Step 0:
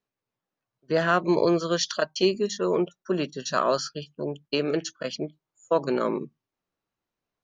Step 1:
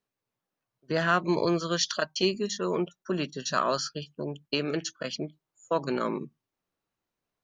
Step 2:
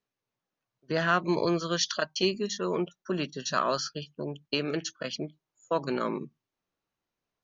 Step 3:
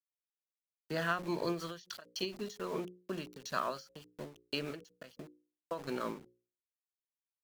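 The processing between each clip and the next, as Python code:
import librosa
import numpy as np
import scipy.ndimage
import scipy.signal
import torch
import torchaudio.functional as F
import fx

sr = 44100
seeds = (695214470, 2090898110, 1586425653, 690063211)

y1 = fx.dynamic_eq(x, sr, hz=490.0, q=0.92, threshold_db=-35.0, ratio=4.0, max_db=-6)
y2 = scipy.signal.sosfilt(scipy.signal.ellip(4, 1.0, 40, 6600.0, 'lowpass', fs=sr, output='sos'), y1)
y3 = np.where(np.abs(y2) >= 10.0 ** (-38.0 / 20.0), y2, 0.0)
y3 = fx.hum_notches(y3, sr, base_hz=60, count=9)
y3 = fx.end_taper(y3, sr, db_per_s=150.0)
y3 = y3 * 10.0 ** (-7.0 / 20.0)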